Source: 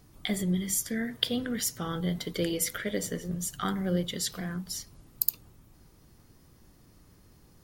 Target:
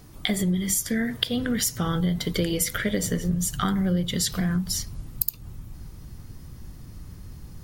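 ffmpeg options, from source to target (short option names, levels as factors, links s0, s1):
-af "asubboost=boost=3:cutoff=200,acompressor=threshold=0.0316:ratio=6,volume=2.82"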